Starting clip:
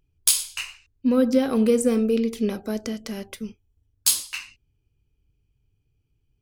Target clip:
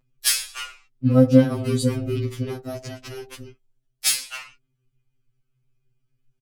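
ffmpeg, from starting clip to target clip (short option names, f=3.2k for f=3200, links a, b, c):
-filter_complex "[0:a]aphaser=in_gain=1:out_gain=1:delay=2.5:decay=0.22:speed=0.43:type=triangular,asplit=4[a][b][c][d];[b]asetrate=22050,aresample=44100,atempo=2,volume=-2dB[e];[c]asetrate=37084,aresample=44100,atempo=1.18921,volume=-8dB[f];[d]asetrate=52444,aresample=44100,atempo=0.840896,volume=-17dB[g];[a][e][f][g]amix=inputs=4:normalize=0,afftfilt=real='re*2.45*eq(mod(b,6),0)':imag='im*2.45*eq(mod(b,6),0)':win_size=2048:overlap=0.75,volume=-1dB"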